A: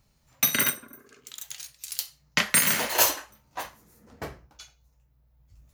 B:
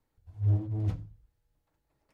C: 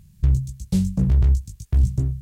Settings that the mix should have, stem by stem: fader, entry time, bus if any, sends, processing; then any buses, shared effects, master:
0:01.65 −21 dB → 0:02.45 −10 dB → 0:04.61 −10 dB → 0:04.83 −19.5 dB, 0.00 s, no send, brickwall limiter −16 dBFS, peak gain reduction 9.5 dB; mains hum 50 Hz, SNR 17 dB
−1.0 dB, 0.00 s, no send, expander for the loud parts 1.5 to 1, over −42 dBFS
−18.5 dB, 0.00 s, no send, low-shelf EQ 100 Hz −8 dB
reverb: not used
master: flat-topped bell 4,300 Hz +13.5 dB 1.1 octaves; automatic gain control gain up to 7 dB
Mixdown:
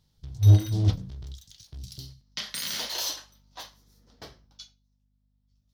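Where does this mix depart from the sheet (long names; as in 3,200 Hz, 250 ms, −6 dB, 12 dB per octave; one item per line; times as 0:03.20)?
stem B −1.0 dB → +10.5 dB
master: missing automatic gain control gain up to 7 dB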